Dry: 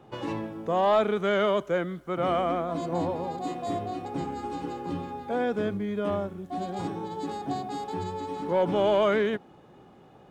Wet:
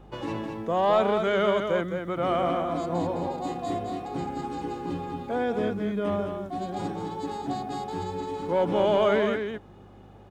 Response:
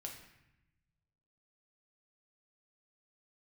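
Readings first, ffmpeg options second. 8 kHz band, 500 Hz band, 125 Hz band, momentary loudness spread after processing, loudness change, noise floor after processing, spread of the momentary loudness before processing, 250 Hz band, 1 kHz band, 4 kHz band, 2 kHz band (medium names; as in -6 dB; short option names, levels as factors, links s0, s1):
+1.0 dB, +1.0 dB, +1.0 dB, 11 LU, +1.0 dB, -49 dBFS, 11 LU, +1.0 dB, +1.0 dB, +1.0 dB, +1.0 dB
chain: -af "aeval=exprs='val(0)+0.00316*(sin(2*PI*50*n/s)+sin(2*PI*2*50*n/s)/2+sin(2*PI*3*50*n/s)/3+sin(2*PI*4*50*n/s)/4+sin(2*PI*5*50*n/s)/5)':c=same,aecho=1:1:211:0.501"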